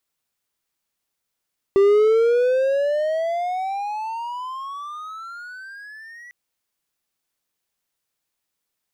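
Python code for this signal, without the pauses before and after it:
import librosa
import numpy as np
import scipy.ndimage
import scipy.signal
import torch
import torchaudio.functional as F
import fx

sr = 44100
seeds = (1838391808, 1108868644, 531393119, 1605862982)

y = fx.riser_tone(sr, length_s=4.55, level_db=-9.0, wave='triangle', hz=390.0, rise_st=28.0, swell_db=-28.0)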